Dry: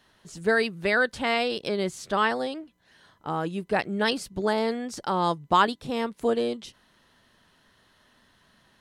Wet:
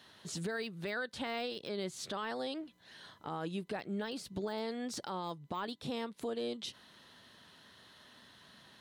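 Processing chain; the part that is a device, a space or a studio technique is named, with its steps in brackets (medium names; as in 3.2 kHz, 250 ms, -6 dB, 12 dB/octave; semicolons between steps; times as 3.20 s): broadcast voice chain (high-pass 88 Hz; de-esser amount 85%; compression 4:1, threshold -37 dBFS, peak gain reduction 16 dB; peaking EQ 3.8 kHz +6 dB 0.62 oct; peak limiter -30.5 dBFS, peak gain reduction 9 dB); trim +1.5 dB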